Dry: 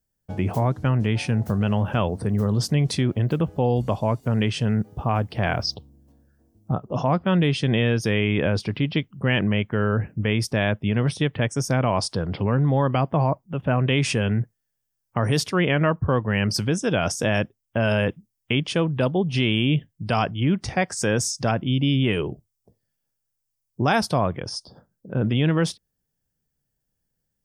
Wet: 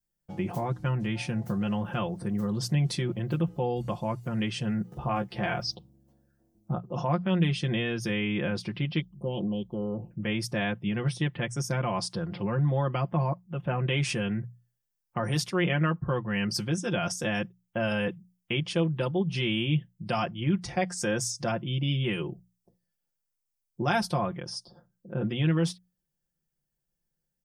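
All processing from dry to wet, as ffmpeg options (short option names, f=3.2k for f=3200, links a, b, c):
-filter_complex "[0:a]asettb=1/sr,asplit=3[a][b][c];[a]atrim=end=4.924[d];[b]atrim=start=4.92:end=5.6,asetpts=PTS-STARTPTS,afade=t=in:d=0.004:c=qsin,afade=t=out:st=0.676:d=0.004:c=qsin,highshelf=f=11k:g=-5.5,acompressor=mode=upward:threshold=-29dB:ratio=2.5:attack=3.2:release=140:knee=2.83:detection=peak,asplit=2[e][f];[f]adelay=15,volume=-5.5dB[g];[e][g]amix=inputs=2:normalize=0,atrim=end_sample=29988[h];[c]atrim=start=5.596[i];[d][h]acrossfade=d=0.004:c1=hsin:c2=qsin[j];[j][i]acrossfade=d=0.004:c1=qsin:c2=hsin,asettb=1/sr,asplit=3[k][l][m];[k]atrim=end=9.014[n];[l]atrim=start=9.01:end=10.11,asetpts=PTS-STARTPTS,afade=t=in:d=0.004:c=qsin,afade=t=out:st=1.096:d=0.004:c=qsin,lowshelf=f=110:g=-9,aeval=exprs='val(0)+0.00178*(sin(2*PI*50*n/s)+sin(2*PI*2*50*n/s)/2+sin(2*PI*3*50*n/s)/3+sin(2*PI*4*50*n/s)/4+sin(2*PI*5*50*n/s)/5)':c=same,asuperstop=centerf=1800:order=8:qfactor=0.72[o];[m]atrim=start=10.106[p];[n][o]acrossfade=d=0.004:c1=hsin:c2=qsin[q];[q][p]acrossfade=d=0.004:c1=qsin:c2=hsin,bandreject=f=60:t=h:w=6,bandreject=f=120:t=h:w=6,bandreject=f=180:t=h:w=6,adynamicequalizer=threshold=0.0158:dfrequency=600:dqfactor=1.3:tfrequency=600:tqfactor=1.3:attack=5:release=100:ratio=0.375:range=2:mode=cutabove:tftype=bell,aecho=1:1:5.7:0.77,volume=-7.5dB"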